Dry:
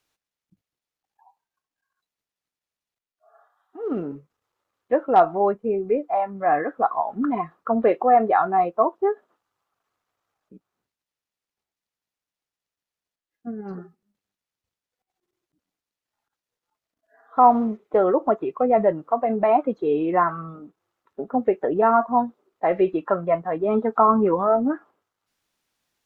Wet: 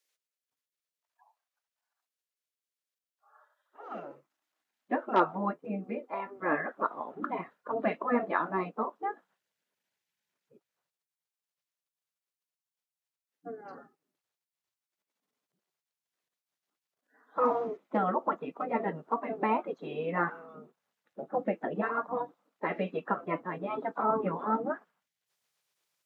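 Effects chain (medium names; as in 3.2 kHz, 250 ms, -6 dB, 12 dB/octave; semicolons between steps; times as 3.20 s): high-pass sweep 790 Hz -> 240 Hz, 3.27–5.35 s; spectral gate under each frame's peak -10 dB weak; trim -2 dB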